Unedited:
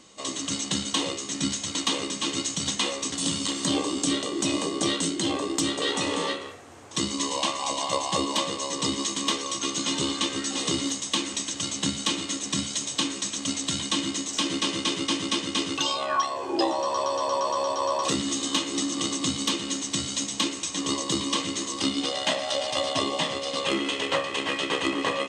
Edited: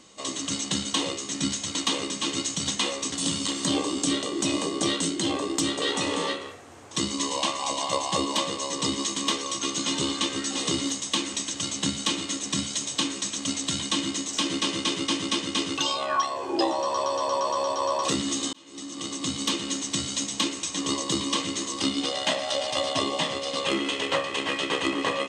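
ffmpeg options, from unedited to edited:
-filter_complex "[0:a]asplit=2[a][b];[a]atrim=end=18.53,asetpts=PTS-STARTPTS,afade=t=out:st=18.526:d=0.004:c=hsin[c];[b]atrim=start=18.53,asetpts=PTS-STARTPTS,afade=t=in:d=1.01[d];[c][d]concat=n=2:v=0:a=1"

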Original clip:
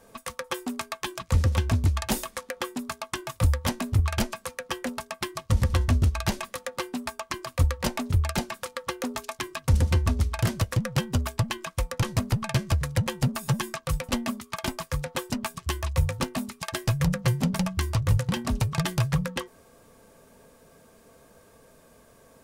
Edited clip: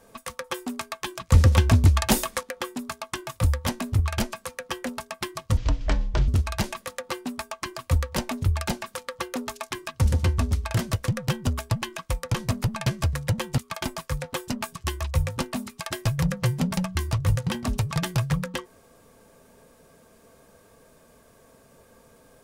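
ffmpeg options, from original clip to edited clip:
-filter_complex "[0:a]asplit=6[a][b][c][d][e][f];[a]atrim=end=1.322[g];[b]atrim=start=1.318:end=2.432,asetpts=PTS-STARTPTS,volume=6dB[h];[c]atrim=start=2.428:end=5.574[i];[d]atrim=start=5.57:end=5.96,asetpts=PTS-STARTPTS,asetrate=24255,aresample=44100[j];[e]atrim=start=5.956:end=13.262[k];[f]atrim=start=14.398[l];[g][h]acrossfade=d=0.004:c1=hsin:c2=hsin[m];[m][i]acrossfade=d=0.004:c1=hsin:c2=hsin[n];[n][j]acrossfade=d=0.004:c1=hsin:c2=hsin[o];[o][k]acrossfade=d=0.004:c1=hsin:c2=hsin[p];[p][l]acrossfade=d=0.004:c1=hsin:c2=hsin"

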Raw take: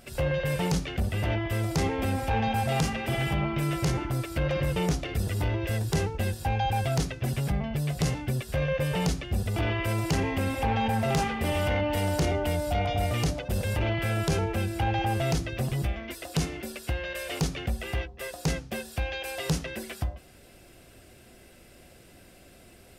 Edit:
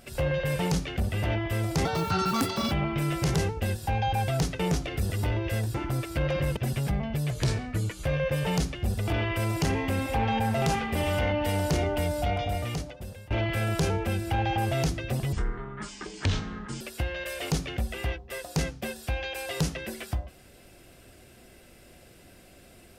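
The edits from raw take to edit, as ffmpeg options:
-filter_complex "[0:a]asplit=12[a][b][c][d][e][f][g][h][i][j][k][l];[a]atrim=end=1.854[m];[b]atrim=start=1.85:end=3.32,asetpts=PTS-STARTPTS,asetrate=74970,aresample=44100[n];[c]atrim=start=3.316:end=3.952[o];[d]atrim=start=5.918:end=7.172[p];[e]atrim=start=4.768:end=5.922[q];[f]atrim=start=3.948:end=4.772[r];[g]atrim=start=7.168:end=7.914[s];[h]atrim=start=7.91:end=8.54,asetpts=PTS-STARTPTS,asetrate=37044,aresample=44100[t];[i]atrim=start=8.536:end=13.79,asetpts=PTS-STARTPTS,afade=t=out:st=4.164:d=1.09:silence=0.0668344[u];[j]atrim=start=13.79:end=15.814,asetpts=PTS-STARTPTS,afade=t=in:d=0.004:c=hsin:silence=0.0668344[v];[k]atrim=start=15.81:end=16.7,asetpts=PTS-STARTPTS,asetrate=26460,aresample=44100[w];[l]atrim=start=16.696[x];[m][n]acrossfade=d=0.004:c1=hsin:c2=hsin[y];[y][o]acrossfade=d=0.004:c1=hsin:c2=hsin[z];[z][p]acrossfade=d=0.004:c1=hsin:c2=hsin[aa];[aa][q]acrossfade=d=0.004:c1=hsin:c2=hsin[ab];[ab][r]acrossfade=d=0.004:c1=hsin:c2=hsin[ac];[ac][s]acrossfade=d=0.004:c1=hsin:c2=hsin[ad];[ad][t]acrossfade=d=0.004:c1=hsin:c2=hsin[ae];[u][v]concat=n=2:v=0:a=1[af];[ae][af]acrossfade=d=0.004:c1=hsin:c2=hsin[ag];[ag][w]acrossfade=d=0.004:c1=hsin:c2=hsin[ah];[ah][x]acrossfade=d=0.004:c1=hsin:c2=hsin"

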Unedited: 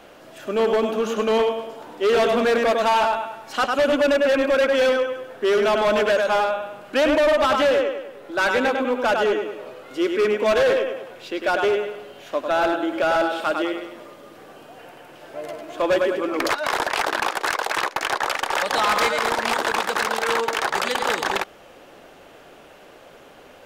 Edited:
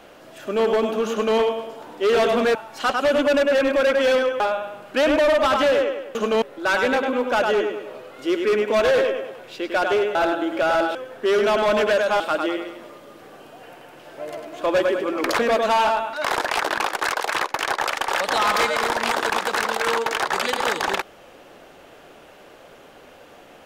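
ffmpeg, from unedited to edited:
-filter_complex "[0:a]asplit=10[a][b][c][d][e][f][g][h][i][j];[a]atrim=end=2.552[k];[b]atrim=start=3.288:end=5.142[l];[c]atrim=start=6.388:end=8.142[m];[d]atrim=start=1.108:end=1.382[n];[e]atrim=start=8.138:end=11.872[o];[f]atrim=start=12.558:end=13.362[p];[g]atrim=start=5.138:end=6.392[q];[h]atrim=start=13.358:end=16.552[r];[i]atrim=start=2.548:end=3.292[s];[j]atrim=start=16.548[t];[k][l]acrossfade=d=0.004:c1=hsin:c2=hsin[u];[u][m]acrossfade=d=0.004:c1=hsin:c2=hsin[v];[v][n]acrossfade=d=0.004:c1=hsin:c2=hsin[w];[w][o]acrossfade=d=0.004:c1=hsin:c2=hsin[x];[x][p]acrossfade=d=0.004:c1=hsin:c2=hsin[y];[y][q]acrossfade=d=0.004:c1=hsin:c2=hsin[z];[z][r]acrossfade=d=0.004:c1=hsin:c2=hsin[aa];[aa][s]acrossfade=d=0.004:c1=hsin:c2=hsin[ab];[ab][t]acrossfade=d=0.004:c1=hsin:c2=hsin"

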